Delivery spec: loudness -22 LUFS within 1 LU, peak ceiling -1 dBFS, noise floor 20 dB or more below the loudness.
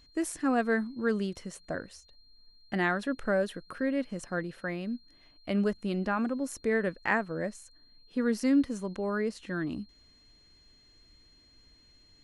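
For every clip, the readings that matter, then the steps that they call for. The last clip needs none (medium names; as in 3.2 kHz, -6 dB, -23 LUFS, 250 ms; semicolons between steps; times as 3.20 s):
steady tone 4.2 kHz; tone level -60 dBFS; loudness -31.5 LUFS; peak level -12.5 dBFS; loudness target -22.0 LUFS
-> band-stop 4.2 kHz, Q 30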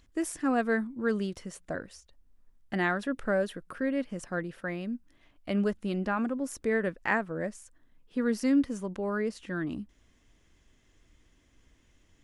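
steady tone not found; loudness -31.5 LUFS; peak level -12.5 dBFS; loudness target -22.0 LUFS
-> trim +9.5 dB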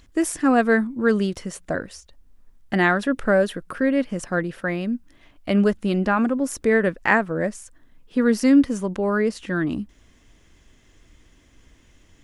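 loudness -22.0 LUFS; peak level -3.0 dBFS; noise floor -56 dBFS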